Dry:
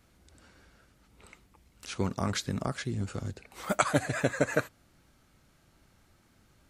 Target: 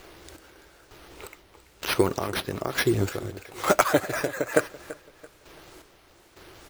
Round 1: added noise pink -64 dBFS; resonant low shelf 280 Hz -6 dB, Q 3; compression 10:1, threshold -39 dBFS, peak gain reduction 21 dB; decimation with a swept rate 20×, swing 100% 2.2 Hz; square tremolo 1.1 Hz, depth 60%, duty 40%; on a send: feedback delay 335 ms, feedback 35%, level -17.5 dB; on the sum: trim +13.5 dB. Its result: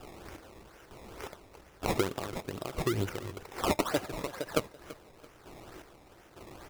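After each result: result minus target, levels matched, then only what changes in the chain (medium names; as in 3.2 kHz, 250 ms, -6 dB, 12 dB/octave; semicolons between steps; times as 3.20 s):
compression: peak gain reduction +9 dB; decimation with a swept rate: distortion +10 dB
change: compression 10:1, threshold -29 dBFS, peak gain reduction 12 dB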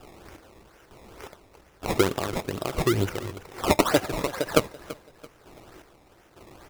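decimation with a swept rate: distortion +10 dB
change: decimation with a swept rate 4×, swing 100% 2.2 Hz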